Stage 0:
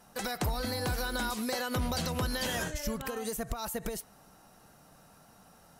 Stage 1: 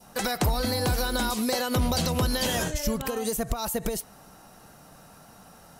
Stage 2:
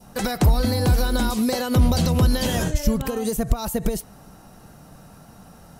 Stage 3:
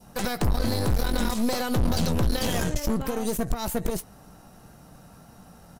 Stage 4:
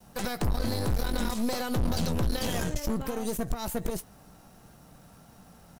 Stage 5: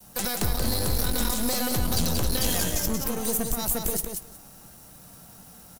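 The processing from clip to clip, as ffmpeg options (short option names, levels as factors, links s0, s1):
-af "adynamicequalizer=threshold=0.00282:dfrequency=1600:dqfactor=1.3:tfrequency=1600:tqfactor=1.3:attack=5:release=100:ratio=0.375:range=2.5:mode=cutabove:tftype=bell,acontrast=89"
-af "lowshelf=f=340:g=10"
-filter_complex "[0:a]aeval=exprs='(tanh(14.1*val(0)+0.8)-tanh(0.8))/14.1':c=same,asplit=2[s0][s1];[s1]adelay=17,volume=0.224[s2];[s0][s2]amix=inputs=2:normalize=0,volume=1.19"
-af "acrusher=bits=8:mix=0:aa=0.5,volume=0.631"
-filter_complex "[0:a]aecho=1:1:181|362|543:0.562|0.09|0.0144,acrossover=split=380[s0][s1];[s1]crystalizer=i=2.5:c=0[s2];[s0][s2]amix=inputs=2:normalize=0"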